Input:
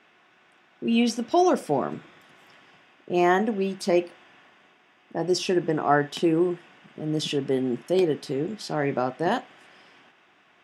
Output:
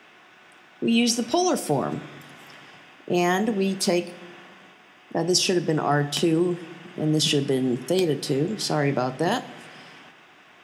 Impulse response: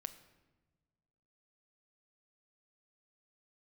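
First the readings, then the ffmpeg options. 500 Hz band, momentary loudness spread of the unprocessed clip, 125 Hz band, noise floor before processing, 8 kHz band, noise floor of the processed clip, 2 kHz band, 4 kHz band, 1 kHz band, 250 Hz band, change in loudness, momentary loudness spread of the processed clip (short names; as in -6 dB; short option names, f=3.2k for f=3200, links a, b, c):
0.0 dB, 10 LU, +6.0 dB, -60 dBFS, +10.5 dB, -52 dBFS, +1.0 dB, +7.5 dB, -1.5 dB, +1.5 dB, +1.5 dB, 13 LU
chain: -filter_complex "[0:a]acrossover=split=160|3000[a][b][c];[b]acompressor=threshold=-30dB:ratio=3[d];[a][d][c]amix=inputs=3:normalize=0,asplit=2[e][f];[1:a]atrim=start_sample=2205,highshelf=f=6.9k:g=11[g];[f][g]afir=irnorm=-1:irlink=0,volume=6dB[h];[e][h]amix=inputs=2:normalize=0"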